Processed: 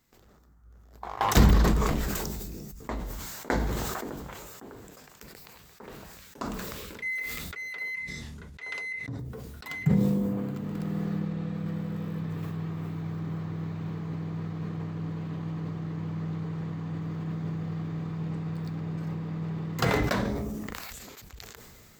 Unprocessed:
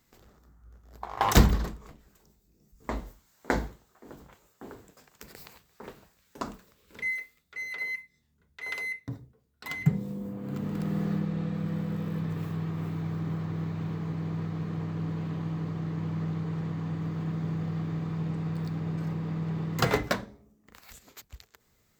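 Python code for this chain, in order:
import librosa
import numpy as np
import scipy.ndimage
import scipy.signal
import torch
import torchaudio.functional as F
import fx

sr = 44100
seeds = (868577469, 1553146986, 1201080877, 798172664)

y = fx.lowpass(x, sr, hz=9000.0, slope=12, at=(7.95, 9.19))
y = fx.sustainer(y, sr, db_per_s=21.0)
y = y * 10.0 ** (-2.0 / 20.0)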